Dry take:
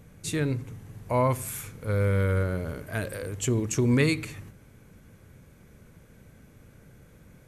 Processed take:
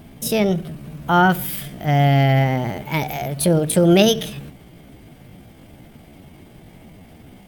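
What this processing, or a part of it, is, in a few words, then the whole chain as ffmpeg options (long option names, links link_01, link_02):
chipmunk voice: -af "asetrate=62367,aresample=44100,atempo=0.707107,volume=9dB"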